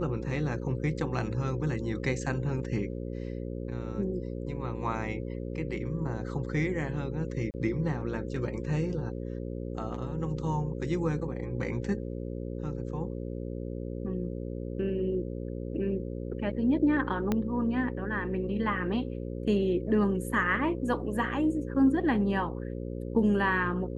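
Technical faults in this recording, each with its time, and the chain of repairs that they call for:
buzz 60 Hz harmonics 9 -36 dBFS
7.51–7.54 s: dropout 29 ms
17.32 s: pop -15 dBFS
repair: de-click; de-hum 60 Hz, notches 9; interpolate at 7.51 s, 29 ms

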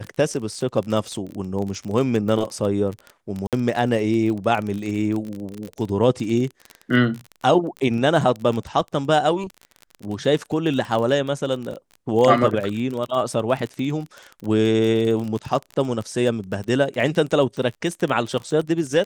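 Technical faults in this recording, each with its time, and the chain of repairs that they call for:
crackle 29 per s -26 dBFS
3.47–3.53 s: dropout 57 ms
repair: de-click; interpolate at 3.47 s, 57 ms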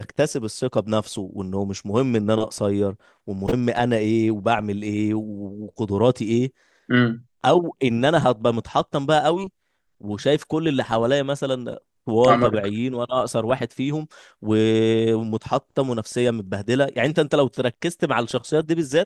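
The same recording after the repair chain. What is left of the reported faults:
nothing left

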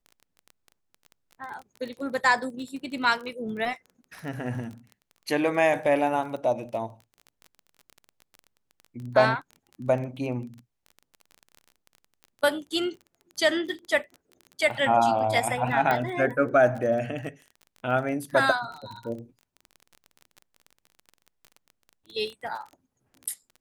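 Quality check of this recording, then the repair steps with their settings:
crackle 22 per s -35 dBFS
15.91 s: pop -13 dBFS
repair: de-click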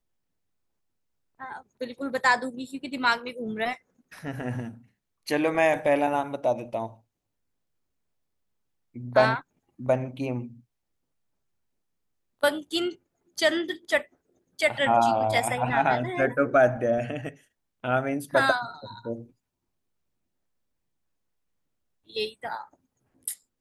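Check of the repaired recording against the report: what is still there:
nothing left

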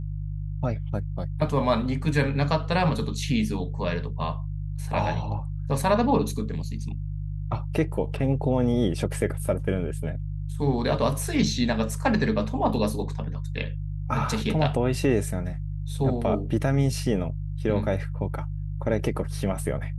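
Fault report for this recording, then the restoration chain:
hum 50 Hz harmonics 3 -31 dBFS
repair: de-hum 50 Hz, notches 3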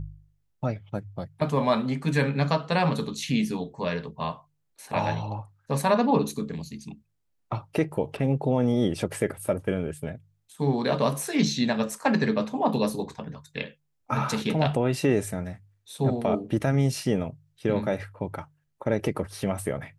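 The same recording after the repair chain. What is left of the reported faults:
nothing left

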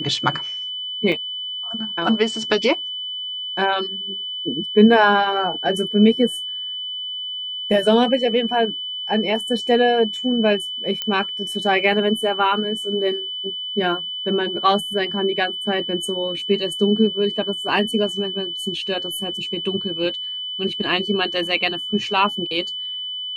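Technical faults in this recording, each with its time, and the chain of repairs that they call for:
whine 3 kHz -26 dBFS
1.12 s: dropout 3.9 ms
11.02 s: pop -10 dBFS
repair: de-click; band-stop 3 kHz, Q 30; interpolate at 1.12 s, 3.9 ms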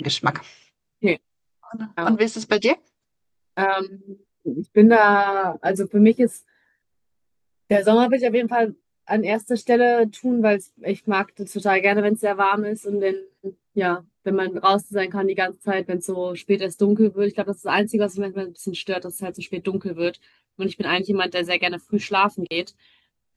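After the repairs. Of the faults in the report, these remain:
nothing left

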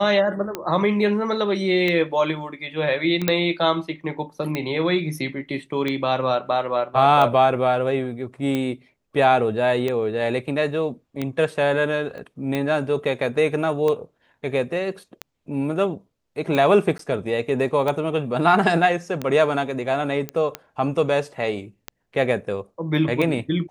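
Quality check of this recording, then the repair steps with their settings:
tick 45 rpm -12 dBFS
3.28 s: pop -4 dBFS
12.18 s: pop -26 dBFS
16.98–16.99 s: dropout 13 ms
20.29 s: pop -13 dBFS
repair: de-click; interpolate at 16.98 s, 13 ms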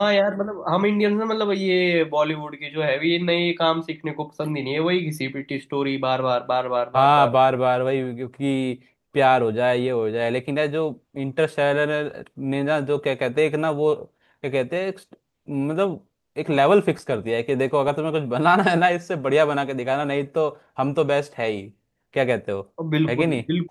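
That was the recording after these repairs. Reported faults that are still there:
12.18 s: pop

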